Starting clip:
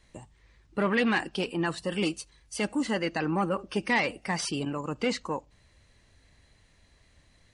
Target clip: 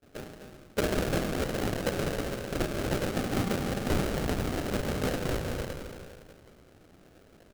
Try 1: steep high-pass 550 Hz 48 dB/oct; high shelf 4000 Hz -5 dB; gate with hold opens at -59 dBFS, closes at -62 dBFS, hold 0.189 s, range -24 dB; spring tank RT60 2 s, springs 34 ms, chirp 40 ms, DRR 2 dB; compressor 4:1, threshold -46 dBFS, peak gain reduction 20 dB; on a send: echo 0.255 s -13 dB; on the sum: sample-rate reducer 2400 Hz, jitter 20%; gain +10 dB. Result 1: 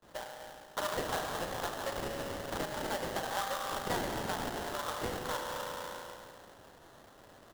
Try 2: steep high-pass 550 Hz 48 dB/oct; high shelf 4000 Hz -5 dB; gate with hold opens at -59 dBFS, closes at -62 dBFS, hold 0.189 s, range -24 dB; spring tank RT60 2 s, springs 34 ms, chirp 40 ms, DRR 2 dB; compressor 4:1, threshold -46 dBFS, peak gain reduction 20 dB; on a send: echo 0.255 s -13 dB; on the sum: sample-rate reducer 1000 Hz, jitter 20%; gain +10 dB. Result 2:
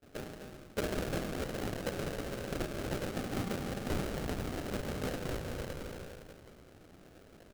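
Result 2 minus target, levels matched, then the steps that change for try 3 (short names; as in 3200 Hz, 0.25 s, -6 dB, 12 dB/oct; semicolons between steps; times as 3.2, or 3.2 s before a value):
compressor: peak gain reduction +6.5 dB
change: compressor 4:1, threshold -37 dBFS, peak gain reduction 13 dB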